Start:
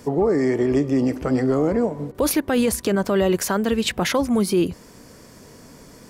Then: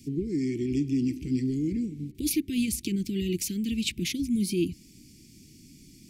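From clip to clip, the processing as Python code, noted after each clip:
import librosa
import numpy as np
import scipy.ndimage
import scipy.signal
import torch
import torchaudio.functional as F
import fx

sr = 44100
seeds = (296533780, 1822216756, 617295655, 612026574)

y = scipy.signal.sosfilt(scipy.signal.cheby1(4, 1.0, [340.0, 2300.0], 'bandstop', fs=sr, output='sos'), x)
y = F.gain(torch.from_numpy(y), -5.0).numpy()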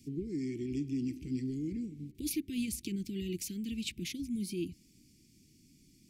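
y = fx.rider(x, sr, range_db=10, speed_s=2.0)
y = F.gain(torch.from_numpy(y), -8.5).numpy()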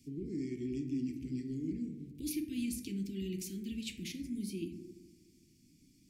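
y = fx.rev_plate(x, sr, seeds[0], rt60_s=1.5, hf_ratio=0.25, predelay_ms=0, drr_db=3.5)
y = F.gain(torch.from_numpy(y), -4.5).numpy()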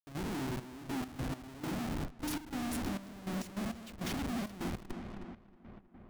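y = fx.schmitt(x, sr, flips_db=-44.5)
y = fx.echo_filtered(y, sr, ms=317, feedback_pct=69, hz=3200.0, wet_db=-9.0)
y = fx.step_gate(y, sr, bpm=101, pattern='.xxx..x.x..xxx.x', floor_db=-12.0, edge_ms=4.5)
y = F.gain(torch.from_numpy(y), 3.0).numpy()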